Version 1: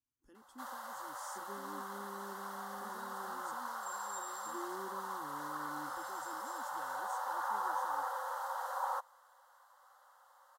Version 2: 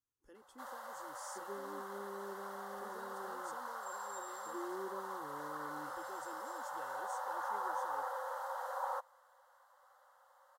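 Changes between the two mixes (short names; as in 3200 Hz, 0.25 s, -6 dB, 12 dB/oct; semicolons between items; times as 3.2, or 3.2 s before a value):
first sound -5.5 dB; master: add graphic EQ 250/500/2000 Hz -7/+10/+4 dB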